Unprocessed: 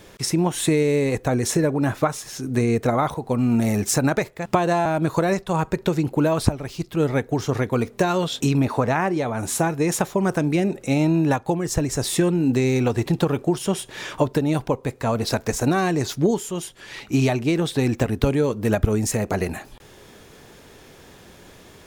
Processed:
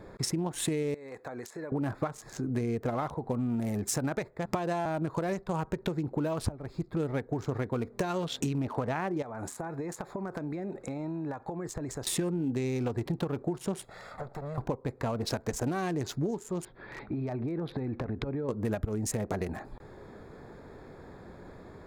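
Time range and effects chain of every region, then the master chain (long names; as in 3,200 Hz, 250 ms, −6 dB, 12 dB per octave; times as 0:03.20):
0:00.94–0:01.72: high-pass filter 1,500 Hz 6 dB per octave + downward compressor 8 to 1, threshold −33 dBFS
0:09.22–0:12.07: low-shelf EQ 420 Hz −8.5 dB + downward compressor 16 to 1, threshold −30 dBFS
0:13.84–0:14.58: lower of the sound and its delayed copy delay 1.5 ms + spectral tilt +1.5 dB per octave + downward compressor 4 to 1, threshold −36 dBFS
0:16.65–0:18.49: low-pass filter 3,800 Hz 24 dB per octave + downward compressor 12 to 1, threshold −27 dBFS
whole clip: adaptive Wiener filter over 15 samples; downward compressor 4 to 1, threshold −30 dBFS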